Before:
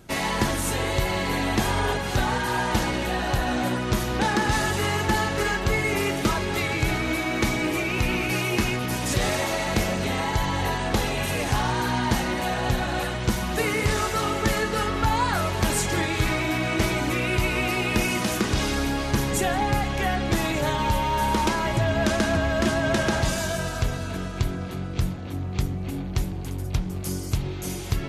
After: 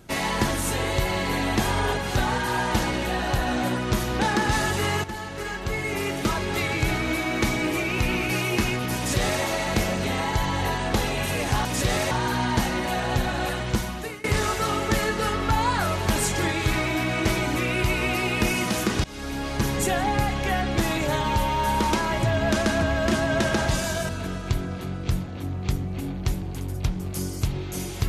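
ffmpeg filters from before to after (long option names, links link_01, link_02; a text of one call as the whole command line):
ffmpeg -i in.wav -filter_complex "[0:a]asplit=7[link_01][link_02][link_03][link_04][link_05][link_06][link_07];[link_01]atrim=end=5.04,asetpts=PTS-STARTPTS,afade=type=out:start_time=5.036:duration=0.004:curve=hsin:silence=0.237137[link_08];[link_02]atrim=start=5.04:end=11.652,asetpts=PTS-STARTPTS,afade=type=in:duration=1.56:silence=0.237137[link_09];[link_03]atrim=start=8.968:end=9.432[link_10];[link_04]atrim=start=11.648:end=13.78,asetpts=PTS-STARTPTS,afade=type=out:start_time=1.592:duration=0.54:silence=0.0749894[link_11];[link_05]atrim=start=13.78:end=18.58,asetpts=PTS-STARTPTS,afade=type=in:duration=0.004:curve=hsin:silence=0.0749894,afade=type=out:start_time=4.796:duration=0.004:curve=hsin:silence=0.0794328[link_12];[link_06]atrim=start=18.58:end=23.632,asetpts=PTS-STARTPTS,afade=type=in:duration=0.86:curve=qsin:silence=0.0794328[link_13];[link_07]atrim=start=23.988[link_14];[link_08][link_09]concat=n=2:v=0:a=1[link_15];[link_15][link_10]acrossfade=duration=0.004:curve1=hsin:curve2=hsin[link_16];[link_11][link_12][link_13]concat=n=3:v=0:a=1[link_17];[link_16][link_17]acrossfade=duration=0.004:curve1=hsin:curve2=hsin[link_18];[link_18][link_14]acrossfade=duration=0.004:curve1=hsin:curve2=hsin" out.wav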